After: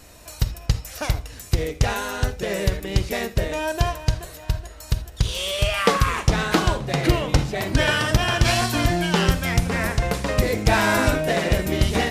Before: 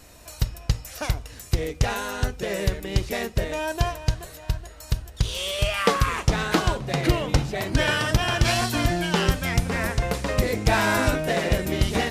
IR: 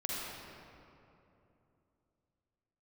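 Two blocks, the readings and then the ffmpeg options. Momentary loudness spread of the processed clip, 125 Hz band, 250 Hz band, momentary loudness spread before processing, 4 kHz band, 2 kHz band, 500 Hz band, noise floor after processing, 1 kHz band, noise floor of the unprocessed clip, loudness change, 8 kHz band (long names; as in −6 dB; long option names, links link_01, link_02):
8 LU, +2.5 dB, +2.5 dB, 8 LU, +2.0 dB, +2.0 dB, +2.0 dB, −41 dBFS, +2.0 dB, −44 dBFS, +2.5 dB, +2.0 dB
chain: -filter_complex "[0:a]asplit=2[link_01][link_02];[1:a]atrim=start_sample=2205,atrim=end_sample=3969[link_03];[link_02][link_03]afir=irnorm=-1:irlink=0,volume=-9dB[link_04];[link_01][link_04]amix=inputs=2:normalize=0"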